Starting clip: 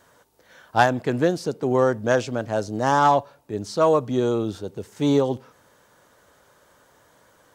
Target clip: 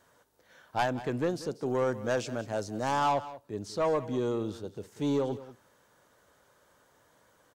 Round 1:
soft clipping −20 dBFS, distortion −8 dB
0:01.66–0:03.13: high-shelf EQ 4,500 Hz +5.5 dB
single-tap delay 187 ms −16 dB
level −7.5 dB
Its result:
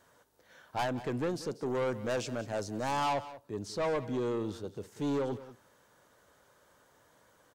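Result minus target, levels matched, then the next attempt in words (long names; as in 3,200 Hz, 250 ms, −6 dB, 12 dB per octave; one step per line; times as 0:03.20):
soft clipping: distortion +6 dB
soft clipping −13 dBFS, distortion −15 dB
0:01.66–0:03.13: high-shelf EQ 4,500 Hz +5.5 dB
single-tap delay 187 ms −16 dB
level −7.5 dB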